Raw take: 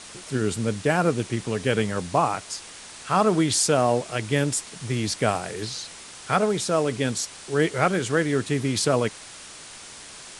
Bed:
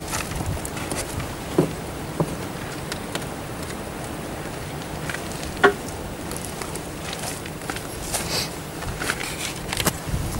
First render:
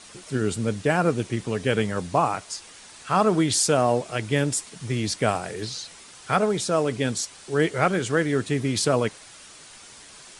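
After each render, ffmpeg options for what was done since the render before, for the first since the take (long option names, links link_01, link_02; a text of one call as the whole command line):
ffmpeg -i in.wav -af "afftdn=noise_reduction=6:noise_floor=-43" out.wav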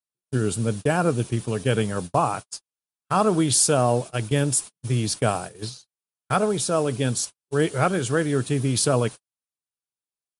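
ffmpeg -i in.wav -af "equalizer=frequency=125:width_type=o:width=0.33:gain=6,equalizer=frequency=2000:width_type=o:width=0.33:gain=-8,equalizer=frequency=10000:width_type=o:width=0.33:gain=10,agate=range=-54dB:threshold=-30dB:ratio=16:detection=peak" out.wav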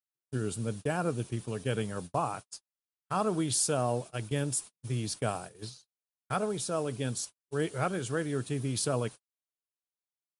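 ffmpeg -i in.wav -af "volume=-9.5dB" out.wav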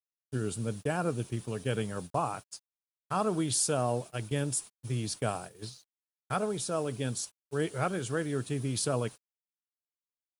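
ffmpeg -i in.wav -af "acrusher=bits=10:mix=0:aa=0.000001" out.wav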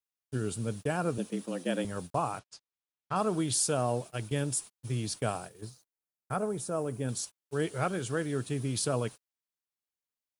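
ffmpeg -i in.wav -filter_complex "[0:a]asettb=1/sr,asplit=3[link_01][link_02][link_03];[link_01]atrim=end=1.184[link_04];[link_02]atrim=start=1.18:end=1.85,asetpts=PTS-STARTPTS,afade=type=in:duration=0.004:curve=qsin,afade=type=out:start_time=0.666:duration=0.004:curve=qsin,afreqshift=86[link_05];[link_03]atrim=start=1.846[link_06];[link_04][link_05]acrossfade=duration=0.004:curve1=hsin:curve2=qsin[link_07];[link_07][link_06]acrossfade=duration=0.004:curve1=qsin:curve2=hsin,asettb=1/sr,asplit=3[link_08][link_09][link_10];[link_08]atrim=end=2.394[link_11];[link_09]atrim=start=2.39:end=3.16,asetpts=PTS-STARTPTS,afade=type=in:duration=0.004:curve=qsin,afade=type=out:start_time=0.766:duration=0.004:curve=qsin,lowpass=4900[link_12];[link_10]atrim=start=3.156[link_13];[link_11][link_12]acrossfade=duration=0.004:curve1=hsin:curve2=qsin[link_14];[link_14][link_13]acrossfade=duration=0.004:curve1=qsin:curve2=hsin,asettb=1/sr,asplit=3[link_15][link_16][link_17];[link_15]atrim=end=5.614[link_18];[link_16]atrim=start=5.61:end=7.09,asetpts=PTS-STARTPTS,afade=type=in:duration=0.004:curve=qsin,afade=type=out:start_time=1.476:duration=0.004:curve=qsin,equalizer=frequency=3700:width_type=o:width=1.6:gain=-12[link_19];[link_17]atrim=start=7.086[link_20];[link_18][link_19]acrossfade=duration=0.004:curve1=hsin:curve2=qsin[link_21];[link_21][link_20]acrossfade=duration=0.004:curve1=qsin:curve2=hsin" out.wav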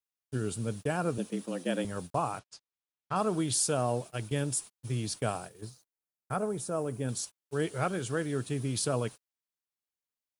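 ffmpeg -i in.wav -af anull out.wav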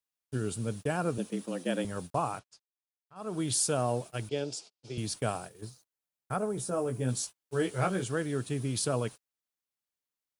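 ffmpeg -i in.wav -filter_complex "[0:a]asettb=1/sr,asplit=3[link_01][link_02][link_03];[link_01]atrim=end=4.294[link_04];[link_02]atrim=start=4.29:end=4.98,asetpts=PTS-STARTPTS,afade=type=in:duration=0.004:curve=qsin,afade=type=out:start_time=0.686:duration=0.004:curve=qsin,highpass=240,equalizer=frequency=250:width_type=q:width=4:gain=-5,equalizer=frequency=430:width_type=q:width=4:gain=4,equalizer=frequency=670:width_type=q:width=4:gain=4,equalizer=frequency=1100:width_type=q:width=4:gain=-10,equalizer=frequency=1800:width_type=q:width=4:gain=-9,equalizer=frequency=4800:width_type=q:width=4:gain=7,lowpass=frequency=6300:width=0.5412,lowpass=frequency=6300:width=1.3066[link_05];[link_03]atrim=start=4.976[link_06];[link_04][link_05]acrossfade=duration=0.004:curve1=hsin:curve2=qsin[link_07];[link_07][link_06]acrossfade=duration=0.004:curve1=qsin:curve2=hsin,asettb=1/sr,asplit=3[link_08][link_09][link_10];[link_08]atrim=end=6.564[link_11];[link_09]atrim=start=6.56:end=8.04,asetpts=PTS-STARTPTS,afade=type=in:duration=0.004:curve=qsin,afade=type=out:start_time=1.476:duration=0.004:curve=qsin,asplit=2[link_12][link_13];[link_13]adelay=16,volume=-4.5dB[link_14];[link_12][link_14]amix=inputs=2:normalize=0,atrim=end_sample=65268[link_15];[link_10]atrim=start=8.036[link_16];[link_11][link_15]acrossfade=duration=0.004:curve1=hsin:curve2=qsin[link_17];[link_17][link_16]acrossfade=duration=0.004:curve1=qsin:curve2=hsin,asplit=3[link_18][link_19][link_20];[link_18]atrim=end=2.67,asetpts=PTS-STARTPTS,afade=type=out:start_time=2.34:duration=0.33:silence=0.0630957[link_21];[link_19]atrim=start=2.67:end=3.15,asetpts=PTS-STARTPTS,volume=-24dB[link_22];[link_20]atrim=start=3.15,asetpts=PTS-STARTPTS,afade=type=in:duration=0.33:silence=0.0630957[link_23];[link_21][link_22][link_23]concat=n=3:v=0:a=1" out.wav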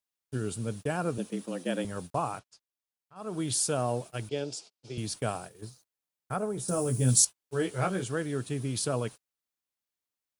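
ffmpeg -i in.wav -filter_complex "[0:a]asettb=1/sr,asplit=3[link_01][link_02][link_03];[link_01]atrim=end=6.684[link_04];[link_02]atrim=start=6.68:end=7.25,asetpts=PTS-STARTPTS,afade=type=in:duration=0.004:curve=qsin,afade=type=out:start_time=0.566:duration=0.004:curve=qsin,bass=frequency=250:gain=8,treble=frequency=4000:gain=15[link_05];[link_03]atrim=start=7.246[link_06];[link_04][link_05]acrossfade=duration=0.004:curve1=hsin:curve2=qsin[link_07];[link_07][link_06]acrossfade=duration=0.004:curve1=qsin:curve2=hsin" out.wav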